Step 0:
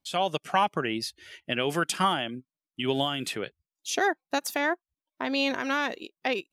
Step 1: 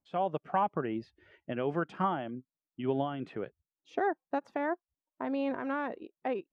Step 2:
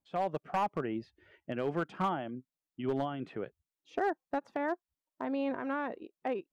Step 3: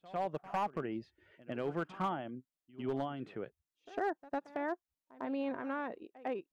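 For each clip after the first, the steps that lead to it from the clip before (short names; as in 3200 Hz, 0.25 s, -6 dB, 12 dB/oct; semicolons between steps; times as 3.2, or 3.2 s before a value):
LPF 1100 Hz 12 dB/oct; gain -3 dB
hard clip -23.5 dBFS, distortion -18 dB; gain -1 dB
pre-echo 0.102 s -18.5 dB; gain -3.5 dB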